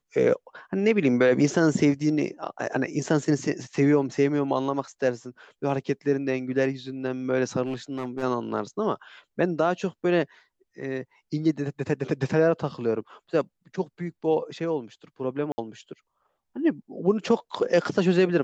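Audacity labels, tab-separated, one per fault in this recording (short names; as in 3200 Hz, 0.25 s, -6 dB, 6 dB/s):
7.650000	8.240000	clipped -25 dBFS
15.520000	15.580000	gap 60 ms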